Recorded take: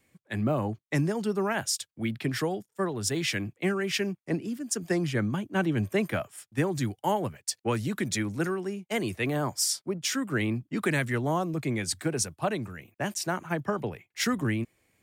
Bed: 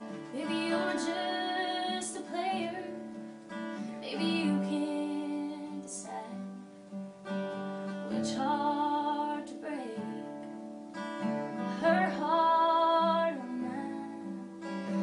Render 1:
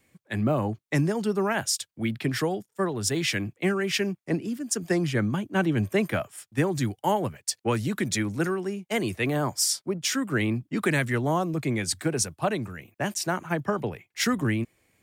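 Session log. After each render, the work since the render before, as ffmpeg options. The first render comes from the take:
ffmpeg -i in.wav -af "volume=2.5dB" out.wav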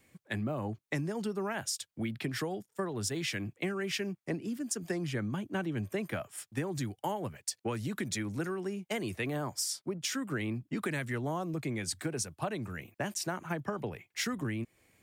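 ffmpeg -i in.wav -af "acompressor=threshold=-33dB:ratio=4" out.wav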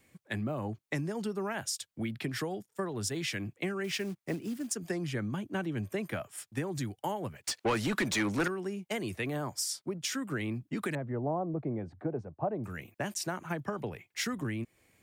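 ffmpeg -i in.wav -filter_complex "[0:a]asettb=1/sr,asplit=3[link_01][link_02][link_03];[link_01]atrim=end=3.844[link_04];[link_02]atrim=start=3.84:end=4.74,asetpts=PTS-STARTPTS,afade=type=in:duration=0.004:curve=qsin,afade=type=out:start_time=0.896:duration=0.004:curve=qsin,acrusher=bits=5:mode=log:mix=0:aa=0.000001[link_05];[link_03]atrim=start=4.736[link_06];[link_04][link_05]acrossfade=duration=0.004:curve1=hsin:curve2=qsin[link_07];[link_07][link_06]acrossfade=duration=0.004:curve1=qsin:curve2=hsin,asettb=1/sr,asplit=3[link_08][link_09][link_10];[link_08]atrim=end=7.444[link_11];[link_09]atrim=start=7.44:end=8.48,asetpts=PTS-STARTPTS,afade=type=in:duration=0.004:curve=qsin,afade=type=out:start_time=1.036:duration=0.004:curve=qsin,asplit=2[link_12][link_13];[link_13]highpass=frequency=720:poles=1,volume=23dB,asoftclip=type=tanh:threshold=-20dB[link_14];[link_12][link_14]amix=inputs=2:normalize=0,lowpass=frequency=3600:poles=1,volume=-6dB[link_15];[link_10]atrim=start=8.476[link_16];[link_11][link_15]acrossfade=duration=0.004:curve1=hsin:curve2=qsin[link_17];[link_17][link_16]acrossfade=duration=0.004:curve1=qsin:curve2=hsin,asettb=1/sr,asplit=3[link_18][link_19][link_20];[link_18]atrim=end=10.954[link_21];[link_19]atrim=start=10.95:end=12.64,asetpts=PTS-STARTPTS,afade=type=in:duration=0.004:curve=qsin,afade=type=out:start_time=1.686:duration=0.004:curve=qsin,lowpass=frequency=720:width_type=q:width=1.7[link_22];[link_20]atrim=start=12.636[link_23];[link_21][link_22]acrossfade=duration=0.004:curve1=hsin:curve2=qsin[link_24];[link_24][link_23]acrossfade=duration=0.004:curve1=qsin:curve2=hsin" out.wav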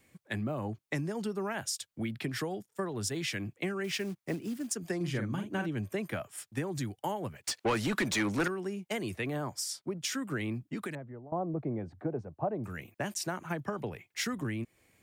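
ffmpeg -i in.wav -filter_complex "[0:a]asettb=1/sr,asplit=3[link_01][link_02][link_03];[link_01]atrim=end=4.964[link_04];[link_02]atrim=start=4.96:end=5.69,asetpts=PTS-STARTPTS,afade=type=in:duration=0.004:curve=qsin,afade=type=out:start_time=0.726:duration=0.004:curve=qsin,asplit=2[link_05][link_06];[link_06]adelay=46,volume=-6.5dB[link_07];[link_05][link_07]amix=inputs=2:normalize=0,atrim=end_sample=32193[link_08];[link_03]atrim=start=5.686[link_09];[link_04][link_08]acrossfade=duration=0.004:curve1=hsin:curve2=qsin[link_10];[link_10][link_09]acrossfade=duration=0.004:curve1=qsin:curve2=hsin,asettb=1/sr,asplit=3[link_11][link_12][link_13];[link_11]atrim=end=9.144[link_14];[link_12]atrim=start=9.14:end=9.97,asetpts=PTS-STARTPTS,afade=type=in:duration=0.004:curve=qsin,afade=type=out:start_time=0.826:duration=0.004:curve=qsin,highshelf=frequency=5000:gain=-3.5[link_15];[link_13]atrim=start=9.966[link_16];[link_14][link_15]acrossfade=duration=0.004:curve1=hsin:curve2=qsin[link_17];[link_17][link_16]acrossfade=duration=0.004:curve1=qsin:curve2=hsin,asplit=2[link_18][link_19];[link_18]atrim=end=11.32,asetpts=PTS-STARTPTS,afade=type=out:start_time=10.55:duration=0.77:silence=0.0841395[link_20];[link_19]atrim=start=11.32,asetpts=PTS-STARTPTS,afade=type=in:duration=0.004:curve=hsin:silence=0.0841395[link_21];[link_20][link_21]concat=n=2:v=0:a=1" out.wav

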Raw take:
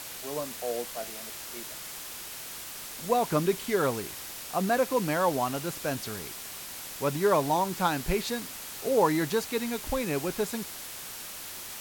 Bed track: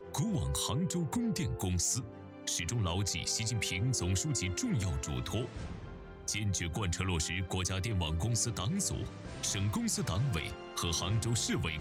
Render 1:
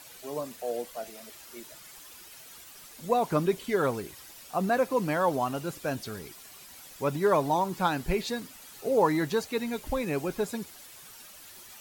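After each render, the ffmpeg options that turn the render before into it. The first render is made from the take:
ffmpeg -i in.wav -af "afftdn=noise_reduction=11:noise_floor=-41" out.wav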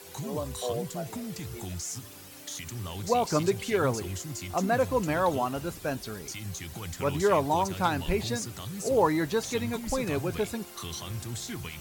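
ffmpeg -i in.wav -i bed.wav -filter_complex "[1:a]volume=-4.5dB[link_01];[0:a][link_01]amix=inputs=2:normalize=0" out.wav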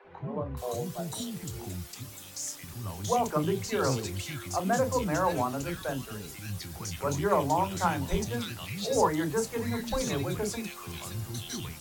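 ffmpeg -i in.wav -filter_complex "[0:a]asplit=2[link_01][link_02];[link_02]adelay=29,volume=-12.5dB[link_03];[link_01][link_03]amix=inputs=2:normalize=0,acrossover=split=410|2100[link_04][link_05][link_06];[link_04]adelay=40[link_07];[link_06]adelay=570[link_08];[link_07][link_05][link_08]amix=inputs=3:normalize=0" out.wav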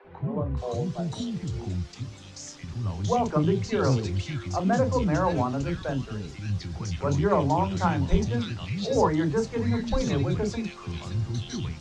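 ffmpeg -i in.wav -af "lowpass=frequency=6000:width=0.5412,lowpass=frequency=6000:width=1.3066,lowshelf=frequency=310:gain=9.5" out.wav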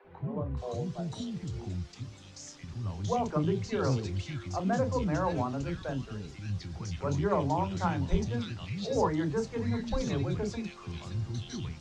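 ffmpeg -i in.wav -af "volume=-5.5dB" out.wav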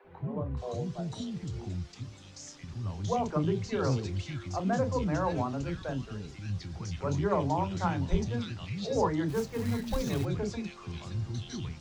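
ffmpeg -i in.wav -filter_complex "[0:a]asplit=3[link_01][link_02][link_03];[link_01]afade=type=out:start_time=9.28:duration=0.02[link_04];[link_02]acrusher=bits=4:mode=log:mix=0:aa=0.000001,afade=type=in:start_time=9.28:duration=0.02,afade=type=out:start_time=10.24:duration=0.02[link_05];[link_03]afade=type=in:start_time=10.24:duration=0.02[link_06];[link_04][link_05][link_06]amix=inputs=3:normalize=0" out.wav

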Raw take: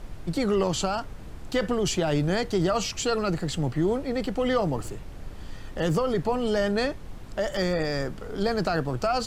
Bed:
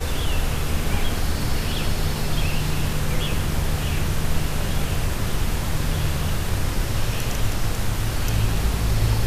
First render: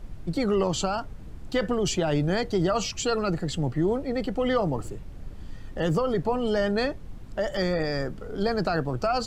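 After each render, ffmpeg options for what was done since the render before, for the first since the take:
ffmpeg -i in.wav -af "afftdn=noise_reduction=7:noise_floor=-40" out.wav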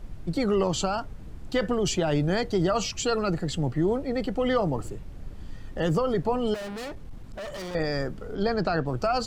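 ffmpeg -i in.wav -filter_complex "[0:a]asettb=1/sr,asplit=3[link_01][link_02][link_03];[link_01]atrim=end=6.544[link_04];[link_02]atrim=start=6.54:end=7.75,asetpts=PTS-STARTPTS,afade=type=in:duration=0.004:curve=qsin,afade=type=out:start_time=1.206:duration=0.004:curve=qsin,volume=34dB,asoftclip=hard,volume=-34dB[link_05];[link_03]atrim=start=7.746[link_06];[link_04][link_05]acrossfade=duration=0.004:curve1=hsin:curve2=qsin[link_07];[link_07][link_06]acrossfade=duration=0.004:curve1=qsin:curve2=hsin,asettb=1/sr,asplit=3[link_08][link_09][link_10];[link_08]atrim=end=8.354[link_11];[link_09]atrim=start=8.35:end=8.86,asetpts=PTS-STARTPTS,afade=type=in:duration=0.004:curve=qsin,afade=type=out:start_time=0.506:duration=0.004:curve=qsin,lowpass=5700[link_12];[link_10]atrim=start=8.856[link_13];[link_11][link_12]acrossfade=duration=0.004:curve1=hsin:curve2=qsin[link_14];[link_14][link_13]acrossfade=duration=0.004:curve1=qsin:curve2=hsin" out.wav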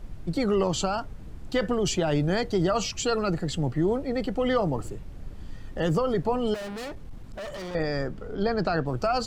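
ffmpeg -i in.wav -filter_complex "[0:a]asettb=1/sr,asplit=3[link_01][link_02][link_03];[link_01]atrim=end=7.554[link_04];[link_02]atrim=start=7.55:end=8.59,asetpts=PTS-STARTPTS,afade=type=in:duration=0.004:curve=qsin,afade=type=out:start_time=1.036:duration=0.004:curve=qsin,highshelf=frequency=5800:gain=-7[link_05];[link_03]atrim=start=8.586[link_06];[link_04][link_05]acrossfade=duration=0.004:curve1=hsin:curve2=qsin[link_07];[link_07][link_06]acrossfade=duration=0.004:curve1=qsin:curve2=hsin" out.wav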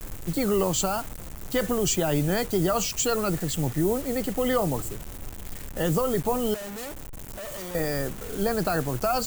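ffmpeg -i in.wav -af "acrusher=bits=6:mix=0:aa=0.000001,aexciter=amount=3.3:drive=3.6:freq=6600" out.wav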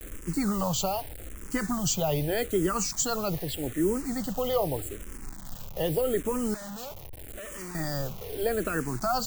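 ffmpeg -i in.wav -filter_complex "[0:a]asplit=2[link_01][link_02];[link_02]afreqshift=-0.82[link_03];[link_01][link_03]amix=inputs=2:normalize=1" out.wav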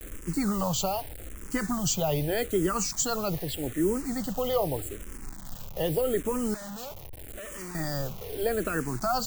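ffmpeg -i in.wav -af anull out.wav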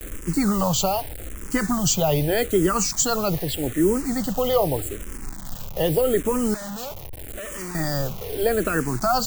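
ffmpeg -i in.wav -af "volume=6.5dB" out.wav

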